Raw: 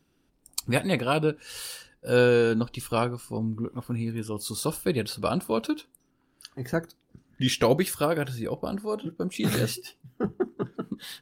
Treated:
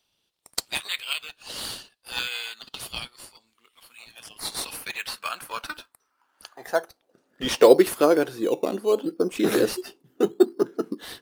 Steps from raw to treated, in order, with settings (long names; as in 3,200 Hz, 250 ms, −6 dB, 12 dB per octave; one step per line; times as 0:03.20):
high-pass filter sweep 3,300 Hz → 350 Hz, 0:04.27–0:07.89
in parallel at −7 dB: sample-and-hold swept by an LFO 11×, swing 60% 0.72 Hz